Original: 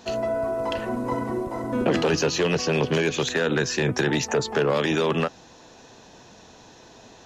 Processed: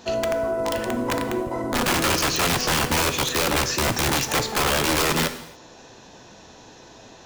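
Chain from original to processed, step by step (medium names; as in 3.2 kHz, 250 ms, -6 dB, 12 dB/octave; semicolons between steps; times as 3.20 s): integer overflow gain 18 dB; gated-style reverb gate 310 ms falling, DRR 8.5 dB; trim +2 dB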